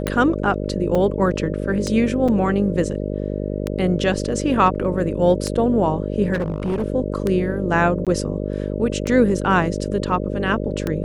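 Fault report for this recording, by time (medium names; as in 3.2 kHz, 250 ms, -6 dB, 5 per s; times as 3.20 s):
buzz 50 Hz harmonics 12 -25 dBFS
tick 33 1/3 rpm -9 dBFS
0.95 s: dropout 4.3 ms
2.28–2.29 s: dropout 5.3 ms
6.33–6.84 s: clipped -18 dBFS
8.05–8.07 s: dropout 17 ms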